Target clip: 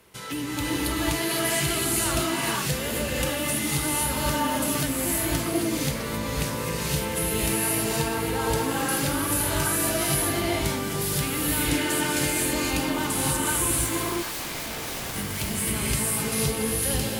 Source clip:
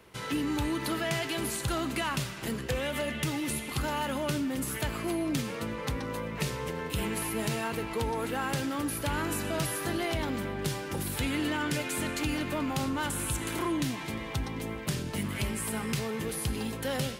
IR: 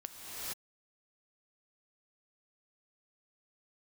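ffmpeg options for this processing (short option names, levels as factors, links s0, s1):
-filter_complex "[0:a]aemphasis=mode=production:type=cd,asettb=1/sr,asplit=3[s0][s1][s2];[s0]atrim=end=13.714[s3];[s1]atrim=start=13.71:end=15.16,asetpts=PTS-STARTPTS,afade=t=in:d=0.004:c=qsin,afade=t=out:st=1.446:d=0.004:c=qsin,aeval=exprs='(mod(39.8*val(0)+1,2)-1)/39.8':c=same[s4];[s2]atrim=start=15.156[s5];[s3][s4]acrossfade=d=0.004:c1=hsin:c2=qsin[s6];[s6][s5]acrossfade=d=0.004:c1=qsin:c2=hsin[s7];[1:a]atrim=start_sample=2205,asetrate=40131,aresample=44100[s8];[s7][s8]afir=irnorm=-1:irlink=0,volume=1.41"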